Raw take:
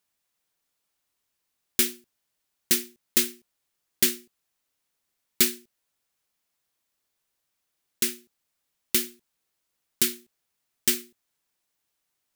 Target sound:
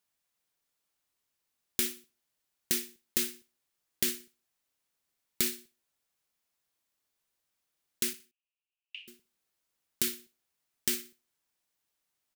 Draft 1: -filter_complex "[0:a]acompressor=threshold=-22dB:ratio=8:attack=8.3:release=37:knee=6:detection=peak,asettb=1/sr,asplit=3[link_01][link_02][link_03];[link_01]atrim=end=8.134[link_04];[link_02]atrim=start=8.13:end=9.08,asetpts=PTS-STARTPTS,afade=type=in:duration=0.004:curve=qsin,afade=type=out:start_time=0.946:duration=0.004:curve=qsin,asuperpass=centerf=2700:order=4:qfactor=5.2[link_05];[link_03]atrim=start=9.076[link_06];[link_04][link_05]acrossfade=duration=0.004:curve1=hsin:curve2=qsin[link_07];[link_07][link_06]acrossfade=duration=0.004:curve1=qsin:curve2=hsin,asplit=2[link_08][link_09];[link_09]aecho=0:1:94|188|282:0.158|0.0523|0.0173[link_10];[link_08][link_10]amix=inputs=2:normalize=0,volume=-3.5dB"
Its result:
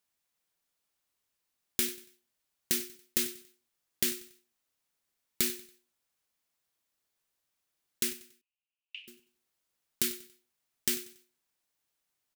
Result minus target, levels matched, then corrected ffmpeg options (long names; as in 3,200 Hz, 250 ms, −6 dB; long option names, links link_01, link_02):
echo 34 ms late
-filter_complex "[0:a]acompressor=threshold=-22dB:ratio=8:attack=8.3:release=37:knee=6:detection=peak,asettb=1/sr,asplit=3[link_01][link_02][link_03];[link_01]atrim=end=8.134[link_04];[link_02]atrim=start=8.13:end=9.08,asetpts=PTS-STARTPTS,afade=type=in:duration=0.004:curve=qsin,afade=type=out:start_time=0.946:duration=0.004:curve=qsin,asuperpass=centerf=2700:order=4:qfactor=5.2[link_05];[link_03]atrim=start=9.076[link_06];[link_04][link_05]acrossfade=duration=0.004:curve1=hsin:curve2=qsin[link_07];[link_07][link_06]acrossfade=duration=0.004:curve1=qsin:curve2=hsin,asplit=2[link_08][link_09];[link_09]aecho=0:1:60|120|180:0.158|0.0523|0.0173[link_10];[link_08][link_10]amix=inputs=2:normalize=0,volume=-3.5dB"